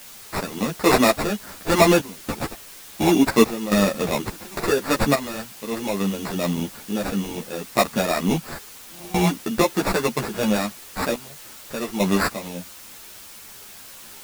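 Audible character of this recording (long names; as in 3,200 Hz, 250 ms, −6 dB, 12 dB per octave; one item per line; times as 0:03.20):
aliases and images of a low sample rate 3,100 Hz, jitter 0%
sample-and-hold tremolo, depth 95%
a quantiser's noise floor 8 bits, dither triangular
a shimmering, thickened sound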